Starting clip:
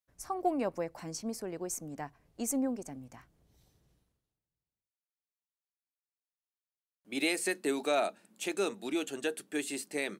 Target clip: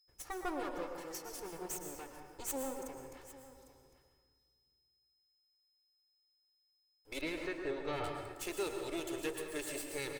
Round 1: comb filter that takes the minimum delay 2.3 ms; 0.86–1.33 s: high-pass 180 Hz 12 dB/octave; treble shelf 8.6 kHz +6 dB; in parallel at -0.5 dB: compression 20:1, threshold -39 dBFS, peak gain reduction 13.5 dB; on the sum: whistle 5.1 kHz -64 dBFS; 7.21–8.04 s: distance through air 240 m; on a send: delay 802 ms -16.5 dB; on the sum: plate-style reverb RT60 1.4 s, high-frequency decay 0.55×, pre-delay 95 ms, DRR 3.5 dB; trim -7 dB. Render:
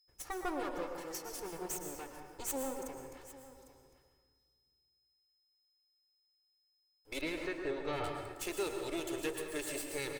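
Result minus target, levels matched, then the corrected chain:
compression: peak gain reduction -7 dB
comb filter that takes the minimum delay 2.3 ms; 0.86–1.33 s: high-pass 180 Hz 12 dB/octave; treble shelf 8.6 kHz +6 dB; in parallel at -0.5 dB: compression 20:1, threshold -46.5 dBFS, peak gain reduction 21 dB; on the sum: whistle 5.1 kHz -64 dBFS; 7.21–8.04 s: distance through air 240 m; on a send: delay 802 ms -16.5 dB; on the sum: plate-style reverb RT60 1.4 s, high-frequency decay 0.55×, pre-delay 95 ms, DRR 3.5 dB; trim -7 dB

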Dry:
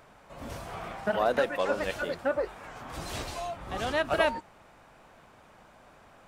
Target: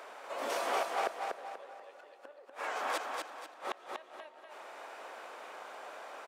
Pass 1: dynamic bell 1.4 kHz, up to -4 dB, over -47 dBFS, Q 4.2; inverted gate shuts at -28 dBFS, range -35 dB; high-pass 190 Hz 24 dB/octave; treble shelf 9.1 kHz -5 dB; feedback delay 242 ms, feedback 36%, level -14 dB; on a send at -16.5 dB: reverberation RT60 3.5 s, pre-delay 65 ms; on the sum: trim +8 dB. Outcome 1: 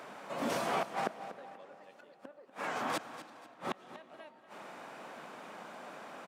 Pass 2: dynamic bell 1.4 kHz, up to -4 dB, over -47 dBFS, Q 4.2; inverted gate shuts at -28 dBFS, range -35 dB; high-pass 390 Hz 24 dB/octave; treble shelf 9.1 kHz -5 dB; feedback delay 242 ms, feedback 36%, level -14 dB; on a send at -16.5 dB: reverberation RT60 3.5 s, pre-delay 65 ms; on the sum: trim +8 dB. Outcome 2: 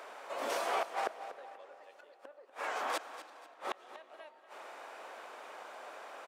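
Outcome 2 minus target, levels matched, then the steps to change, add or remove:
echo-to-direct -8.5 dB
change: feedback delay 242 ms, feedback 36%, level -4 dB

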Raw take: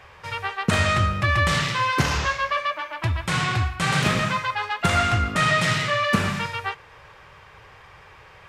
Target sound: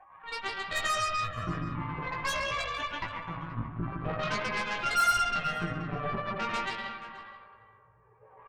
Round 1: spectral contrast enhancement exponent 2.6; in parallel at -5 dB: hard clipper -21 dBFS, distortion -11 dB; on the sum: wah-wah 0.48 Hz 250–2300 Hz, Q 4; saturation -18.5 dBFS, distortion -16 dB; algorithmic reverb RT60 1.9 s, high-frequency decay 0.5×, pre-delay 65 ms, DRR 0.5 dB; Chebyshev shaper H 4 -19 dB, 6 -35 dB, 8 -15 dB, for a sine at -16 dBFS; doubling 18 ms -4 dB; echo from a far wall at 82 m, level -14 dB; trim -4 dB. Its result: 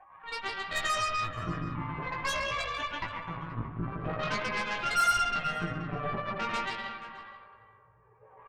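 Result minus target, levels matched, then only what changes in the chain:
hard clipper: distortion +25 dB
change: hard clipper -11 dBFS, distortion -37 dB

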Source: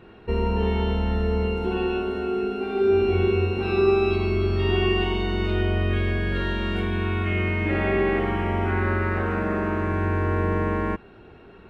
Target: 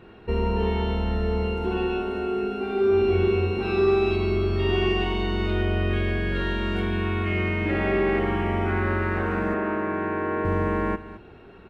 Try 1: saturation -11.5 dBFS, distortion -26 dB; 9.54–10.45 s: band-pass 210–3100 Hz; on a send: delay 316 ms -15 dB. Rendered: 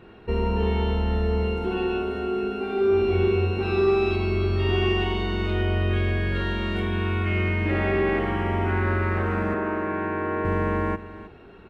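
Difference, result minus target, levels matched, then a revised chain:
echo 103 ms late
saturation -11.5 dBFS, distortion -26 dB; 9.54–10.45 s: band-pass 210–3100 Hz; on a send: delay 213 ms -15 dB

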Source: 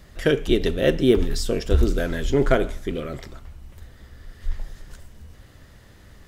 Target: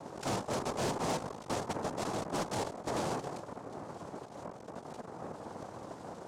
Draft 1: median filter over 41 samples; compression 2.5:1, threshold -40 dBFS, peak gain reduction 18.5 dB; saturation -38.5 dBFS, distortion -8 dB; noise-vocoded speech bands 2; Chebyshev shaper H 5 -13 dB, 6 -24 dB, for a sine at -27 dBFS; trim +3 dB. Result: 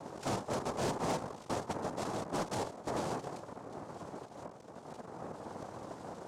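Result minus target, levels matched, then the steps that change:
compression: peak gain reduction +6.5 dB
change: compression 2.5:1, threshold -29.5 dBFS, peak gain reduction 12 dB

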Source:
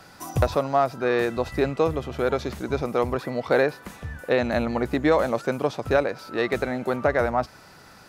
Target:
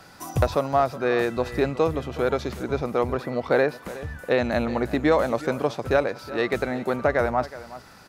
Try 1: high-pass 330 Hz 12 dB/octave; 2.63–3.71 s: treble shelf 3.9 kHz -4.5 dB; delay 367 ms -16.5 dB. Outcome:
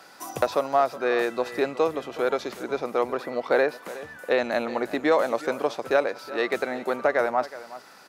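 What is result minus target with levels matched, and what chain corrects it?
250 Hz band -3.5 dB
2.63–3.71 s: treble shelf 3.9 kHz -4.5 dB; delay 367 ms -16.5 dB

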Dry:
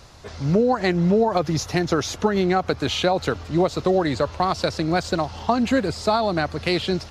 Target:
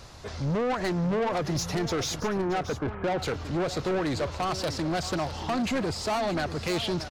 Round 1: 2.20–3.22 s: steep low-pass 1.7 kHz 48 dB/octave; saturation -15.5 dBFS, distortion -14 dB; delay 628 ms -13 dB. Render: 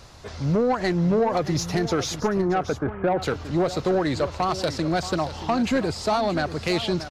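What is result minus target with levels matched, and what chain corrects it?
saturation: distortion -8 dB
2.20–3.22 s: steep low-pass 1.7 kHz 48 dB/octave; saturation -24.5 dBFS, distortion -6 dB; delay 628 ms -13 dB

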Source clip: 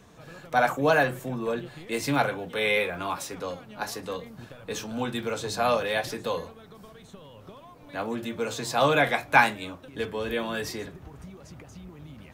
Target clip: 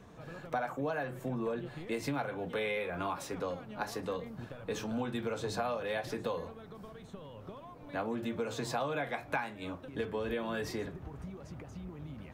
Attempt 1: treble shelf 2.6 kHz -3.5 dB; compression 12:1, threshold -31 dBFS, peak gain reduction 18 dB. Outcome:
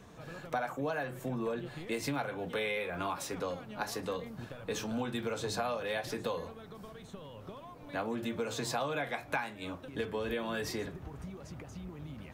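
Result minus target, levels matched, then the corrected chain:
4 kHz band +3.0 dB
treble shelf 2.6 kHz -9.5 dB; compression 12:1, threshold -31 dBFS, peak gain reduction 17 dB

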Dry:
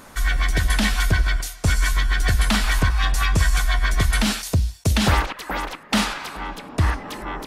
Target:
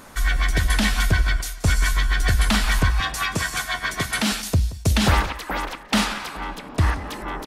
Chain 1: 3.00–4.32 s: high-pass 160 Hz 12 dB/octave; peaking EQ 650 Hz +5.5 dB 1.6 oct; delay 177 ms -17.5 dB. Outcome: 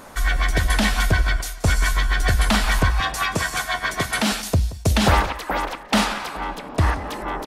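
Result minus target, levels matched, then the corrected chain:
500 Hz band +3.5 dB
3.00–4.32 s: high-pass 160 Hz 12 dB/octave; delay 177 ms -17.5 dB

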